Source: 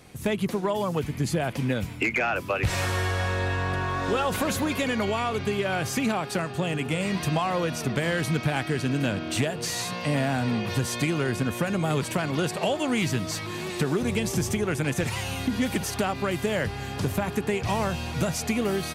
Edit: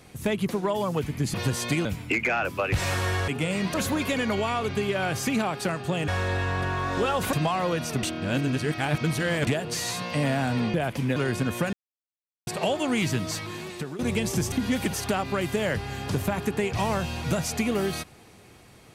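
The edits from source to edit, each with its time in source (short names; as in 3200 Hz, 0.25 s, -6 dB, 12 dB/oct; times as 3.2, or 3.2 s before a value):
1.34–1.76 swap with 10.65–11.16
3.19–4.44 swap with 6.78–7.24
7.94–9.38 reverse
11.73–12.47 mute
13.32–13.99 fade out, to -13.5 dB
14.52–15.42 cut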